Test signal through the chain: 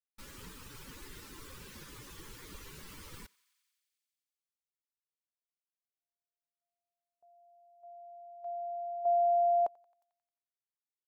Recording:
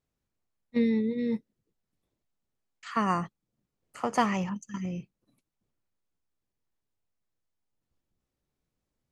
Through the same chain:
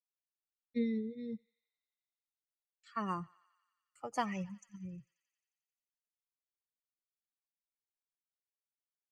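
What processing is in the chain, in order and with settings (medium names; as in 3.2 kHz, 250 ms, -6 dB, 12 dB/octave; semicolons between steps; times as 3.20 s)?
expander on every frequency bin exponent 2; gate with hold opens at -56 dBFS; thinning echo 89 ms, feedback 80%, high-pass 950 Hz, level -23.5 dB; trim -7 dB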